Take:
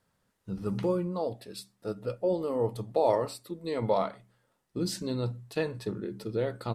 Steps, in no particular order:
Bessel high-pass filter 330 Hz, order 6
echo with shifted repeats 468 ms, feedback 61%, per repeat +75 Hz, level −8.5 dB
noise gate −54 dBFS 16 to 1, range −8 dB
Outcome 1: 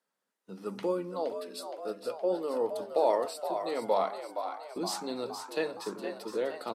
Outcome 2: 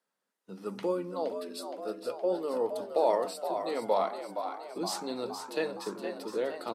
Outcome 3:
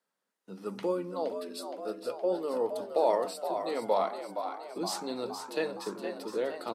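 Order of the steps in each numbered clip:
Bessel high-pass filter, then noise gate, then echo with shifted repeats
echo with shifted repeats, then Bessel high-pass filter, then noise gate
noise gate, then echo with shifted repeats, then Bessel high-pass filter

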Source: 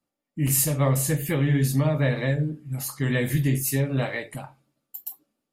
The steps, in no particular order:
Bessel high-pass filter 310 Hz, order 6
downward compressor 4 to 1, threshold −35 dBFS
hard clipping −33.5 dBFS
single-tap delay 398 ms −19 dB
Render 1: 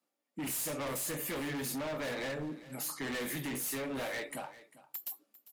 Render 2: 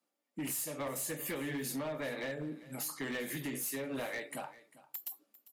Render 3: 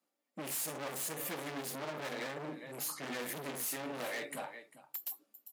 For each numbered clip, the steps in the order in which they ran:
Bessel high-pass filter, then hard clipping, then single-tap delay, then downward compressor
Bessel high-pass filter, then downward compressor, then hard clipping, then single-tap delay
single-tap delay, then hard clipping, then Bessel high-pass filter, then downward compressor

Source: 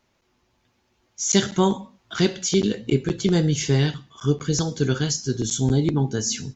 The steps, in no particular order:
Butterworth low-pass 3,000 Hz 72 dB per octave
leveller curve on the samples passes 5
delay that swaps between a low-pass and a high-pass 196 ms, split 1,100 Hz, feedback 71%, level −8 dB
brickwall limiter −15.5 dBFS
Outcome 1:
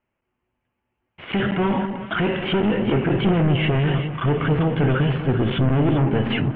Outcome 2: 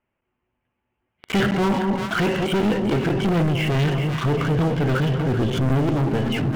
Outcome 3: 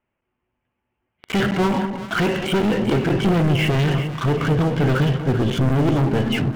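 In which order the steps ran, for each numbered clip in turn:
leveller curve on the samples, then Butterworth low-pass, then brickwall limiter, then delay that swaps between a low-pass and a high-pass
Butterworth low-pass, then leveller curve on the samples, then delay that swaps between a low-pass and a high-pass, then brickwall limiter
Butterworth low-pass, then leveller curve on the samples, then brickwall limiter, then delay that swaps between a low-pass and a high-pass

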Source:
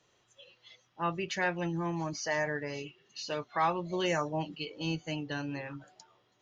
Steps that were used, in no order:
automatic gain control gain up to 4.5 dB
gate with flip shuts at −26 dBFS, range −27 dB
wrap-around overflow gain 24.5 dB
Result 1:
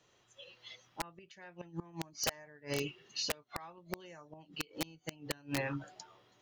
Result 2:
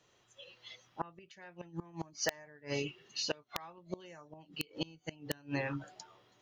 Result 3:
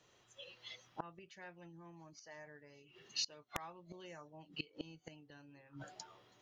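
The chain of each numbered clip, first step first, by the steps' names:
gate with flip, then automatic gain control, then wrap-around overflow
gate with flip, then wrap-around overflow, then automatic gain control
automatic gain control, then gate with flip, then wrap-around overflow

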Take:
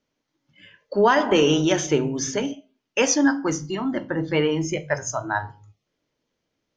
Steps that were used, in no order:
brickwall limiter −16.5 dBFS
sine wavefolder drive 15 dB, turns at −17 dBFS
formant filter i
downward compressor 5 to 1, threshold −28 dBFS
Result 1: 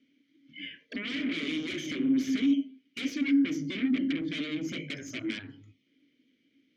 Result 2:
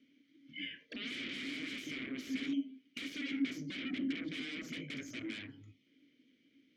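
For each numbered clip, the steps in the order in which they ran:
downward compressor, then brickwall limiter, then sine wavefolder, then formant filter
brickwall limiter, then sine wavefolder, then downward compressor, then formant filter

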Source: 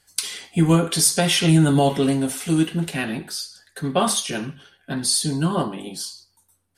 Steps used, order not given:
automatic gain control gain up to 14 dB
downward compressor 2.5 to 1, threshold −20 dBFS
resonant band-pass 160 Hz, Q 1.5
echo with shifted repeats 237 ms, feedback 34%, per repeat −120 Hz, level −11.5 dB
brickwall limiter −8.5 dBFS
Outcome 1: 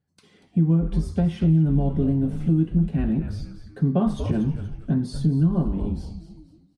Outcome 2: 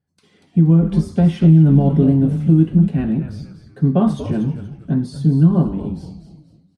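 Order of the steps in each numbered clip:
resonant band-pass, then automatic gain control, then echo with shifted repeats, then downward compressor, then brickwall limiter
echo with shifted repeats, then brickwall limiter, then resonant band-pass, then downward compressor, then automatic gain control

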